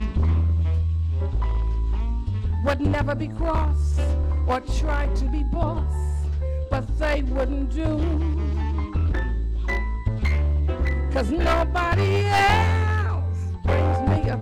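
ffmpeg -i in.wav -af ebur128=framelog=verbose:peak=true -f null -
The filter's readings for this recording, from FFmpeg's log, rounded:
Integrated loudness:
  I:         -23.7 LUFS
  Threshold: -33.7 LUFS
Loudness range:
  LRA:         3.6 LU
  Threshold: -44.0 LUFS
  LRA low:   -25.2 LUFS
  LRA high:  -21.6 LUFS
True peak:
  Peak:       -5.5 dBFS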